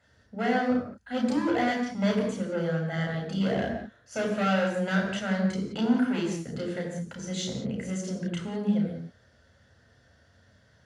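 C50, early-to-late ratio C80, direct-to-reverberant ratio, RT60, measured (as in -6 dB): 4.5 dB, 6.0 dB, -0.5 dB, no single decay rate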